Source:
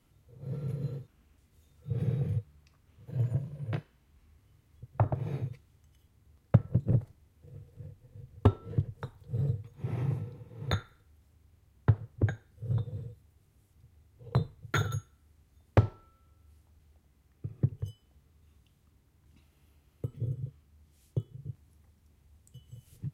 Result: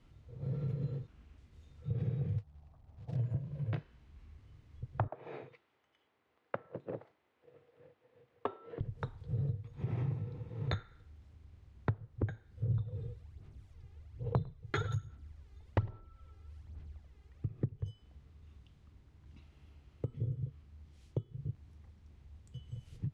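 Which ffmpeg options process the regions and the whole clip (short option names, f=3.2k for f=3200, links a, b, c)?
-filter_complex "[0:a]asettb=1/sr,asplit=3[a][b][c];[a]atrim=end=2.384[d];[b]atrim=start=2.38:end=3.16,asetpts=PTS-STARTPTS,afade=t=in:d=0.004:c=qsin,afade=t=out:st=0.776:d=0.004:c=qsin,lowpass=f=740:t=q:w=4.3,equalizer=f=420:t=o:w=1.7:g=-8.5,acrusher=bits=5:mode=log:mix=0:aa=0.000001[e];[c]atrim=start=3.156[f];[d][e]acrossfade=d=0.004:c1=hsin:c2=qsin[g];[g][f]acrossfade=d=0.004:c1=qsin:c2=hsin,asettb=1/sr,asplit=3[h][i][j];[h]atrim=end=5.084[k];[i]atrim=start=5.08:end=8.81,asetpts=PTS-STARTPTS,afade=t=in:d=0.004:c=qsin,afade=t=out:st=3.726:d=0.004:c=qsin,highpass=290,acrossover=split=370 3400:gain=0.2 1 0.2[l][m][n];[l][m][n]amix=inputs=3:normalize=0[o];[j]atrim=start=8.806[p];[k][o]acrossfade=d=0.004:c1=hsin:c2=qsin[q];[q][p]acrossfade=d=0.004:c1=qsin:c2=hsin,asettb=1/sr,asplit=3[r][s][t];[r]atrim=end=12.634[u];[s]atrim=start=12.63:end=17.48,asetpts=PTS-STARTPTS,afade=t=in:d=0.004:c=qsin,afade=t=out:st=4.846:d=0.004:c=qsin,aphaser=in_gain=1:out_gain=1:delay=2.5:decay=0.57:speed=1.2:type=sinusoidal,aecho=1:1:103:0.0944,atrim=end_sample=213885[v];[t]atrim=start=17.476[w];[u][v]acrossfade=d=0.004:c1=hsin:c2=qsin[x];[x][w]acrossfade=d=0.004:c1=qsin:c2=hsin,lowpass=4.7k,lowshelf=f=64:g=8.5,acompressor=threshold=-37dB:ratio=3,volume=2.5dB"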